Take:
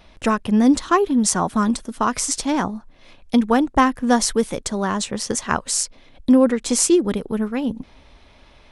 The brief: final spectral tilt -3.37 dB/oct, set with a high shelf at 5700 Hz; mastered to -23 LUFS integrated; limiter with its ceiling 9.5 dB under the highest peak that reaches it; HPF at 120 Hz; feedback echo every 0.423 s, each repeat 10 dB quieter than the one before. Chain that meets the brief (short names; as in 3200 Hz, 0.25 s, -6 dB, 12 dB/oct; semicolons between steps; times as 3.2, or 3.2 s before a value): HPF 120 Hz; high shelf 5700 Hz +5.5 dB; limiter -8.5 dBFS; feedback echo 0.423 s, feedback 32%, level -10 dB; gain -2.5 dB